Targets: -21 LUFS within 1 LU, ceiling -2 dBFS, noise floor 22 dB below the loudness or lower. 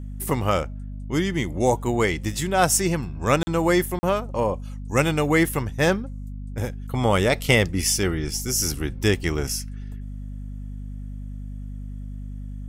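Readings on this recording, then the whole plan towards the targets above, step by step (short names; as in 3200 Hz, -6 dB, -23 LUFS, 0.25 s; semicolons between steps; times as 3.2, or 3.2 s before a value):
dropouts 2; longest dropout 40 ms; hum 50 Hz; harmonics up to 250 Hz; hum level -31 dBFS; loudness -23.0 LUFS; peak -5.0 dBFS; loudness target -21.0 LUFS
-> interpolate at 3.43/3.99, 40 ms; de-hum 50 Hz, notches 5; gain +2 dB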